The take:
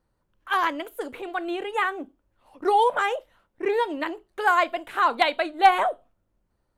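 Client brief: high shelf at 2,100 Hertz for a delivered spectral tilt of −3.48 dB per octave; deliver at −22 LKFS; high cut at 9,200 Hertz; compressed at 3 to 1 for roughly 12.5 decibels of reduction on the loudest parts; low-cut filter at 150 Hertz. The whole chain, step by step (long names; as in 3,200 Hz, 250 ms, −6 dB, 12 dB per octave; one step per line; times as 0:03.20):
high-pass filter 150 Hz
low-pass filter 9,200 Hz
high-shelf EQ 2,100 Hz +7.5 dB
downward compressor 3 to 1, threshold −26 dBFS
level +7.5 dB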